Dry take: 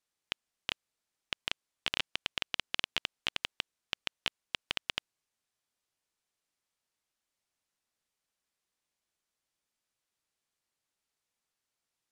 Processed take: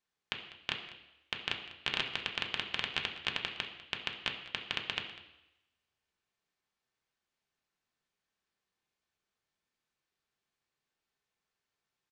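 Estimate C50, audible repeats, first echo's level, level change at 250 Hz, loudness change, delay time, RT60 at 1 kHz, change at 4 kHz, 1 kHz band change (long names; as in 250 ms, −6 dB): 8.0 dB, 1, −17.5 dB, +3.0 dB, +0.5 dB, 198 ms, 0.90 s, 0.0 dB, +2.0 dB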